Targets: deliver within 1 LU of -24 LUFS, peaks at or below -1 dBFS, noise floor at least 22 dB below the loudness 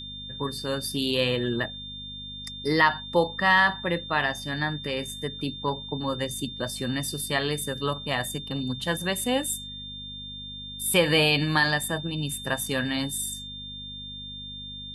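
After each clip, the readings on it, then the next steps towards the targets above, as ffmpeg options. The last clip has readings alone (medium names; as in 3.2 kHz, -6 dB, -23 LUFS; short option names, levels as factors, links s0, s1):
hum 50 Hz; highest harmonic 250 Hz; hum level -43 dBFS; steady tone 3.6 kHz; tone level -37 dBFS; loudness -27.0 LUFS; peak level -7.5 dBFS; loudness target -24.0 LUFS
-> -af "bandreject=f=50:t=h:w=4,bandreject=f=100:t=h:w=4,bandreject=f=150:t=h:w=4,bandreject=f=200:t=h:w=4,bandreject=f=250:t=h:w=4"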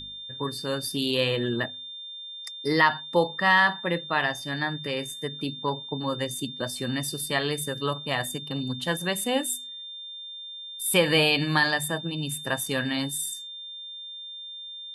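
hum not found; steady tone 3.6 kHz; tone level -37 dBFS
-> -af "bandreject=f=3600:w=30"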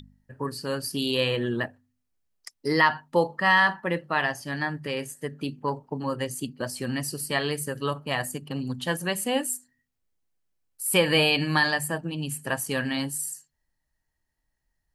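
steady tone not found; loudness -26.5 LUFS; peak level -7.5 dBFS; loudness target -24.0 LUFS
-> -af "volume=1.33"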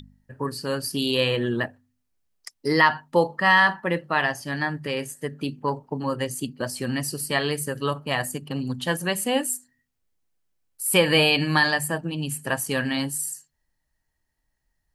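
loudness -24.0 LUFS; peak level -5.0 dBFS; noise floor -76 dBFS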